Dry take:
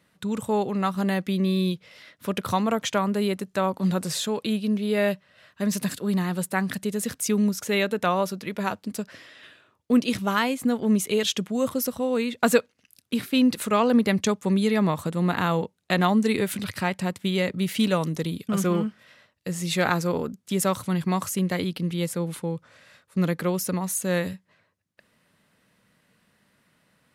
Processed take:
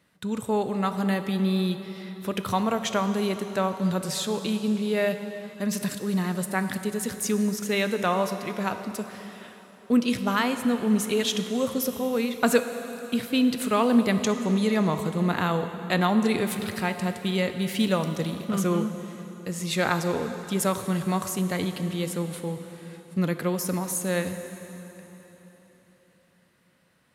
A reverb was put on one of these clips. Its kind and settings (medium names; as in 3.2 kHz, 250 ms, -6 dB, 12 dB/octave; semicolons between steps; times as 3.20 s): plate-style reverb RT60 4 s, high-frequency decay 0.85×, DRR 8 dB; trim -1.5 dB